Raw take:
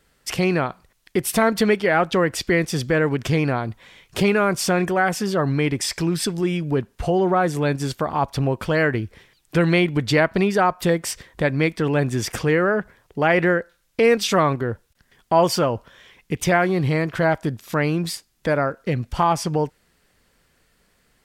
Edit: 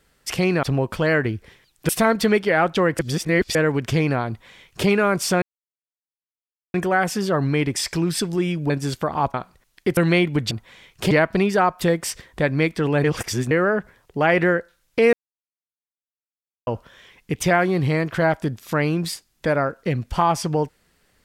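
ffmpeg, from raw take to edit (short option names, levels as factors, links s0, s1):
-filter_complex "[0:a]asplit=15[s0][s1][s2][s3][s4][s5][s6][s7][s8][s9][s10][s11][s12][s13][s14];[s0]atrim=end=0.632[s15];[s1]atrim=start=8.318:end=9.582[s16];[s2]atrim=start=1.258:end=2.362[s17];[s3]atrim=start=2.358:end=2.922,asetpts=PTS-STARTPTS,areverse[s18];[s4]atrim=start=2.918:end=4.79,asetpts=PTS-STARTPTS,afade=t=out:st=1.868:d=0.004:c=hsin,apad=pad_dur=1.32[s19];[s5]atrim=start=4.79:end=6.752,asetpts=PTS-STARTPTS,afade=t=in:d=0.004:c=hsin[s20];[s6]atrim=start=7.678:end=8.322[s21];[s7]atrim=start=0.628:end=1.262[s22];[s8]atrim=start=9.578:end=10.122[s23];[s9]atrim=start=3.648:end=4.252[s24];[s10]atrim=start=10.118:end=12.052[s25];[s11]atrim=start=12.048:end=12.522,asetpts=PTS-STARTPTS,areverse[s26];[s12]atrim=start=12.518:end=14.14,asetpts=PTS-STARTPTS,afade=t=out:st=1.618:d=0.004:c=hsin[s27];[s13]atrim=start=14.14:end=15.68,asetpts=PTS-STARTPTS,volume=0[s28];[s14]atrim=start=15.68,asetpts=PTS-STARTPTS,afade=t=in:d=0.004:c=hsin[s29];[s15][s16]acrossfade=d=0.004:c1=hsin:c2=hsin[s30];[s30][s17]acrossfade=d=0.004:c1=hsin:c2=hsin[s31];[s31][s18]acrossfade=d=0.004:c1=hsin:c2=hsin[s32];[s19][s20]concat=n=2:v=0:a=1[s33];[s32][s33]acrossfade=d=0.004:c1=hsin:c2=hsin[s34];[s34][s21]acrossfade=d=0.004:c1=hsin:c2=hsin[s35];[s35][s22]acrossfade=d=0.004:c1=hsin:c2=hsin[s36];[s36][s23]acrossfade=d=0.004:c1=hsin:c2=hsin[s37];[s37][s24]acrossfade=d=0.004:c1=hsin:c2=hsin[s38];[s38][s25]acrossfade=d=0.004:c1=hsin:c2=hsin[s39];[s39][s26]acrossfade=d=0.004:c1=hsin:c2=hsin[s40];[s27][s28][s29]concat=n=3:v=0:a=1[s41];[s40][s41]acrossfade=d=0.004:c1=hsin:c2=hsin"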